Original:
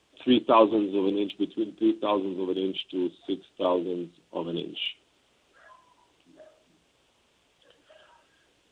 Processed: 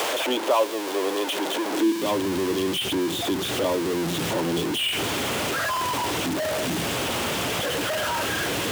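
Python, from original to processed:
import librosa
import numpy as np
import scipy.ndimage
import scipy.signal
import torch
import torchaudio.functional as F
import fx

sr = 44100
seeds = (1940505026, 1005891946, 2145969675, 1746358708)

y = x + 0.5 * 10.0 ** (-20.5 / 20.0) * np.sign(x)
y = fx.filter_sweep_highpass(y, sr, from_hz=560.0, to_hz=91.0, start_s=1.67, end_s=2.22, q=1.8)
y = fx.band_squash(y, sr, depth_pct=70)
y = y * librosa.db_to_amplitude(-2.5)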